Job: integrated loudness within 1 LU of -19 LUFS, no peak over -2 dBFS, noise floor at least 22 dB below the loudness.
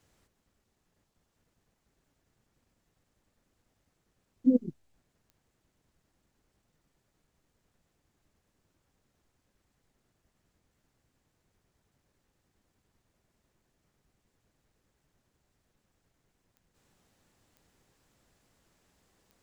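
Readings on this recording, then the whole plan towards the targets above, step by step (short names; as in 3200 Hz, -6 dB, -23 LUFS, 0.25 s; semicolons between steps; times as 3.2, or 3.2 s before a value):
clicks 4; loudness -28.5 LUFS; peak -13.5 dBFS; loudness target -19.0 LUFS
-> de-click; gain +9.5 dB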